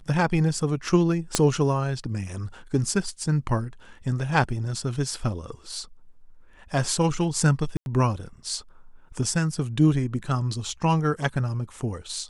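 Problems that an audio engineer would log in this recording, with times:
1.35 s: pop -5 dBFS
7.77–7.86 s: dropout 91 ms

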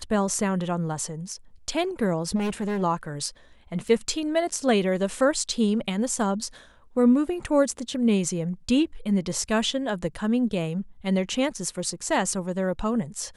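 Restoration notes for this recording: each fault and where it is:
2.35–2.83 s: clipped -23.5 dBFS
3.88 s: dropout 3.9 ms

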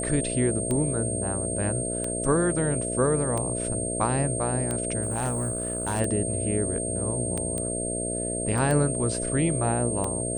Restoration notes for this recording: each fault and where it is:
buzz 60 Hz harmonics 11 -32 dBFS
tick 45 rpm -16 dBFS
whine 8.6 kHz -30 dBFS
5.03–6.01 s: clipped -23 dBFS
7.58 s: pop -17 dBFS
8.58 s: dropout 2.4 ms

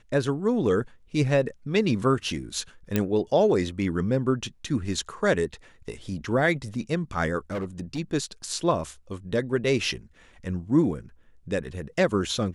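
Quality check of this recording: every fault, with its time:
2.96 s: pop -9 dBFS
7.51–7.99 s: clipped -26 dBFS

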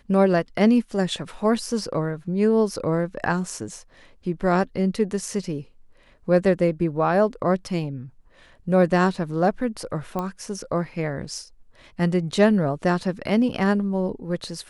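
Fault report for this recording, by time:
10.19 s: pop -15 dBFS

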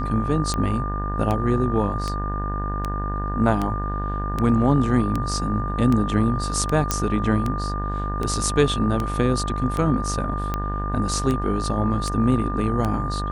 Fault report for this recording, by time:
buzz 50 Hz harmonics 37 -27 dBFS
tick 78 rpm -12 dBFS
whine 1.2 kHz -29 dBFS
6.91 s: pop -5 dBFS

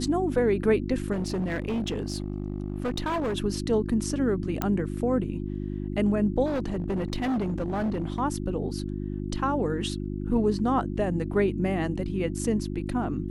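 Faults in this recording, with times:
hum 50 Hz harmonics 7 -32 dBFS
1.12–3.38 s: clipped -24.5 dBFS
4.62 s: pop -12 dBFS
6.45–8.20 s: clipped -24 dBFS

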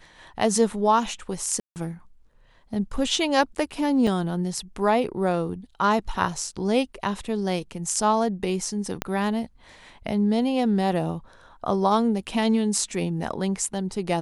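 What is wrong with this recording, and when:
1.60–1.76 s: dropout 159 ms
4.07 s: dropout 3.5 ms
9.02 s: pop -10 dBFS

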